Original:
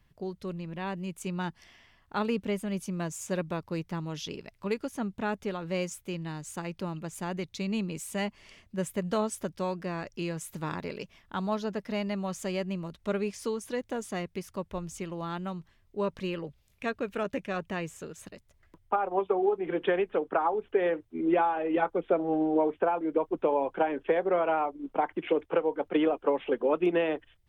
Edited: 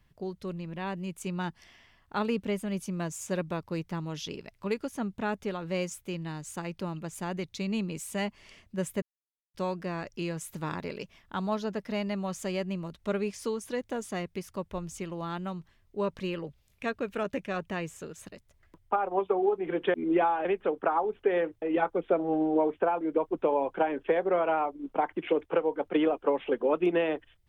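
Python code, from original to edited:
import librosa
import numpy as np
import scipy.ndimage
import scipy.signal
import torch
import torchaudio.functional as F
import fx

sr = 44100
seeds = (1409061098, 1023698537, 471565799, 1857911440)

y = fx.edit(x, sr, fx.silence(start_s=9.02, length_s=0.52),
    fx.move(start_s=21.11, length_s=0.51, to_s=19.94), tone=tone)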